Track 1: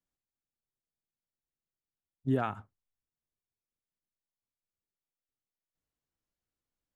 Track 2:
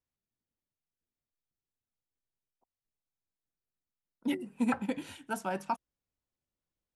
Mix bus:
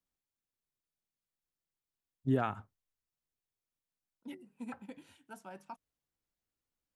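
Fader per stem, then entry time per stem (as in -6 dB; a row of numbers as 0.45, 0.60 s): -1.0, -14.5 dB; 0.00, 0.00 s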